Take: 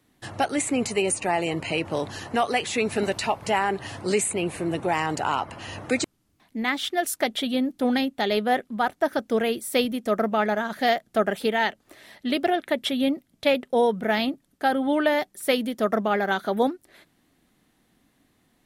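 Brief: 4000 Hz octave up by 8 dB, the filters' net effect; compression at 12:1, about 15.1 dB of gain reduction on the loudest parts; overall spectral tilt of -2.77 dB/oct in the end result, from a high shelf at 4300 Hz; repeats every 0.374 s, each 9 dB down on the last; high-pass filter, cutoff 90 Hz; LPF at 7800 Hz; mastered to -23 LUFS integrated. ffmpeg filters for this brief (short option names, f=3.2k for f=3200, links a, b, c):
-af "highpass=90,lowpass=7.8k,equalizer=f=4k:t=o:g=7,highshelf=f=4.3k:g=7,acompressor=threshold=-31dB:ratio=12,aecho=1:1:374|748|1122|1496:0.355|0.124|0.0435|0.0152,volume=12dB"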